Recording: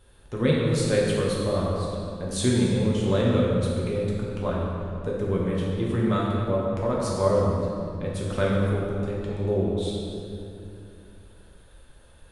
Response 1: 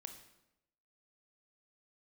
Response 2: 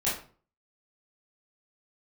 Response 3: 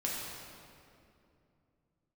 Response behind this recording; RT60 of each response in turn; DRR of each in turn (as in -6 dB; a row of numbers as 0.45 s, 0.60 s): 3; 0.90 s, 0.40 s, 2.6 s; 6.0 dB, -9.5 dB, -5.0 dB